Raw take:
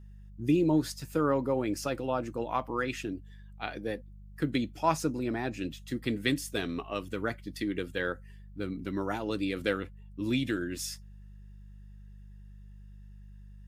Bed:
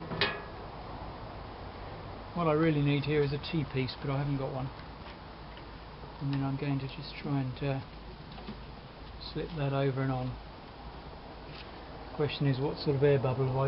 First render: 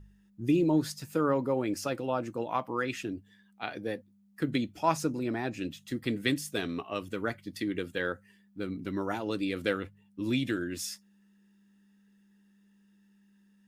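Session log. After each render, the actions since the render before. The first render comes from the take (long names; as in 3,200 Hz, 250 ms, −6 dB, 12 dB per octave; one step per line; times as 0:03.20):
hum removal 50 Hz, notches 3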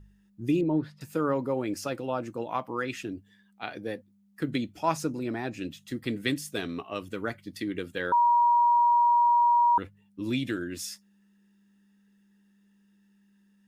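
0:00.61–0:01.01: high-frequency loss of the air 480 metres
0:08.12–0:09.78: beep over 954 Hz −18 dBFS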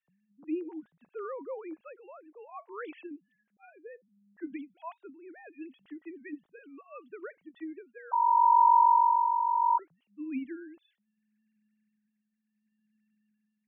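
three sine waves on the formant tracks
amplitude tremolo 0.69 Hz, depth 60%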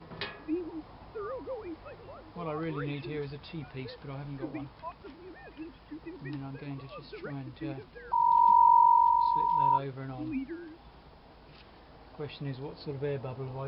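mix in bed −8.5 dB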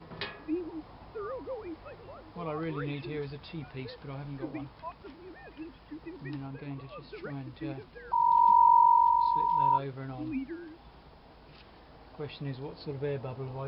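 0:06.47–0:07.12: Bessel low-pass filter 4,000 Hz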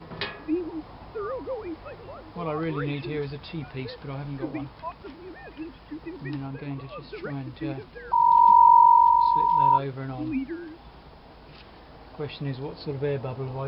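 level +6 dB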